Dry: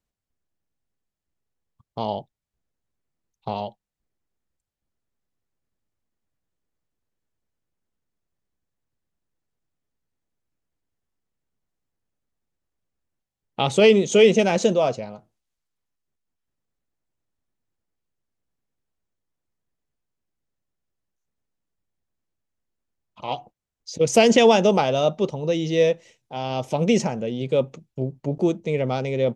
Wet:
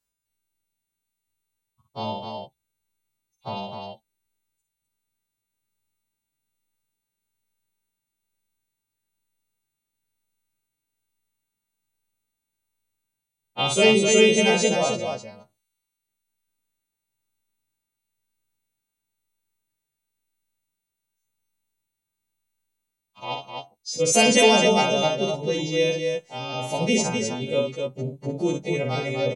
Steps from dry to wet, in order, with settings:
every partial snapped to a pitch grid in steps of 2 semitones
loudspeakers that aren't time-aligned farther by 19 metres −5 dB, 88 metres −5 dB
level −3 dB

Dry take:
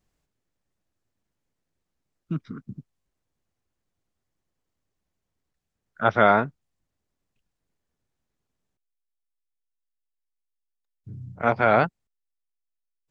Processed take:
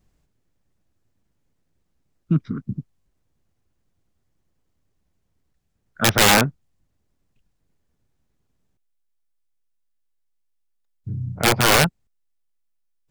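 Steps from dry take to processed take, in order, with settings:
low-shelf EQ 300 Hz +8 dB
wrap-around overflow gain 12 dB
level +4 dB

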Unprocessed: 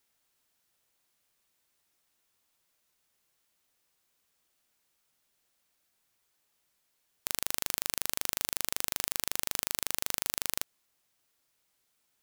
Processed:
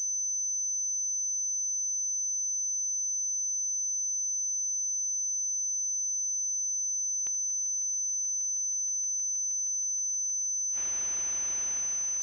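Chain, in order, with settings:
high-pass filter 880 Hz 12 dB per octave
dead-zone distortion −32.5 dBFS
feedback delay with all-pass diffusion 1,233 ms, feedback 47%, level −7 dB
gate with flip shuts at −13 dBFS, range −30 dB
switching amplifier with a slow clock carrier 6,100 Hz
level −3 dB

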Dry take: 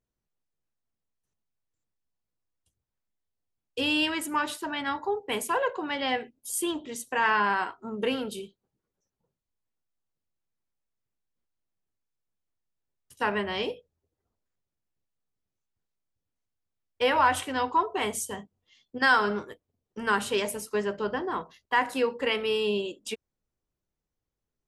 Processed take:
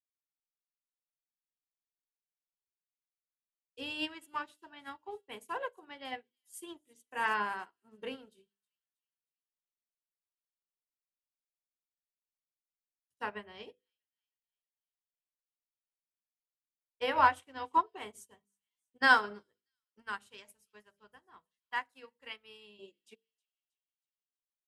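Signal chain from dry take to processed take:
mains-hum notches 50/100/150/200/250/300/350/400/450/500 Hz
0:20.02–0:22.79: parametric band 370 Hz −10.5 dB 2 octaves
delay with a high-pass on its return 318 ms, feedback 56%, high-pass 3,800 Hz, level −16 dB
expander for the loud parts 2.5 to 1, over −42 dBFS

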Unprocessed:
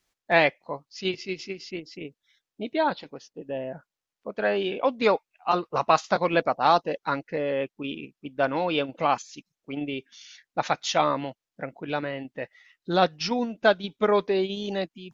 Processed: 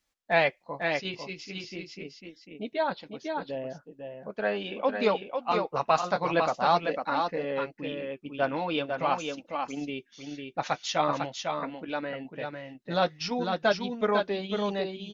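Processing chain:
notch filter 370 Hz, Q 12
on a send: single-tap delay 500 ms −5 dB
on the sum: flanger 0.42 Hz, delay 3.3 ms, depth 4.4 ms, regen −47%

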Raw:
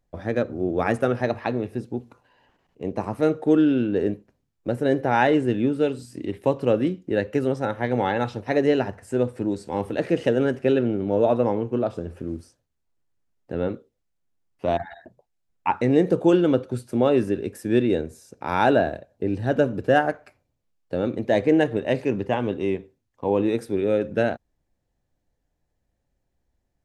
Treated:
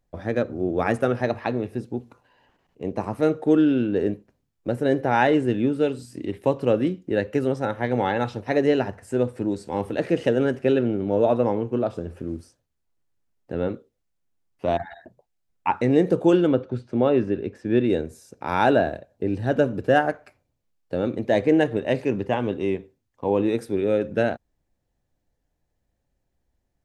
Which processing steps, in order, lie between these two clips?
0:16.47–0:17.84: high-frequency loss of the air 170 metres

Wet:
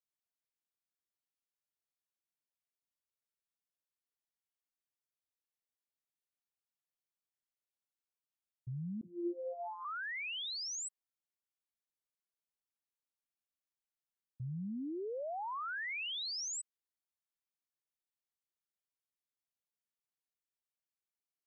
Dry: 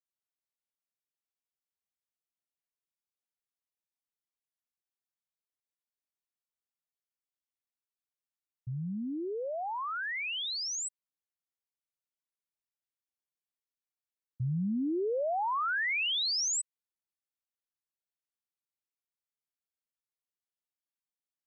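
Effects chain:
dynamic equaliser 150 Hz, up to +6 dB, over −46 dBFS, Q 0.75
brickwall limiter −31.5 dBFS, peak gain reduction 10 dB
0:09.01–0:09.85: channel vocoder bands 32, saw 174 Hz
level −5.5 dB

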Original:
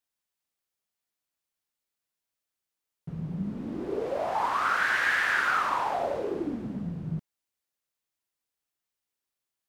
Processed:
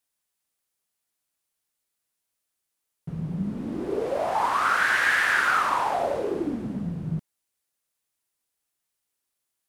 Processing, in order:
parametric band 10,000 Hz +6 dB 0.86 octaves
level +3.5 dB

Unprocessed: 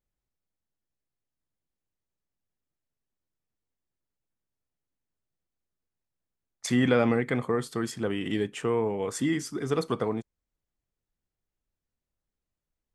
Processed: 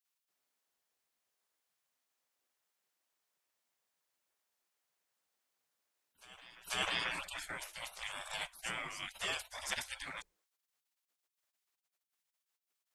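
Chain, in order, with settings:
mains-hum notches 60/120/180/240 Hz
backwards echo 490 ms −21 dB
gate on every frequency bin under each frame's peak −30 dB weak
level +9.5 dB

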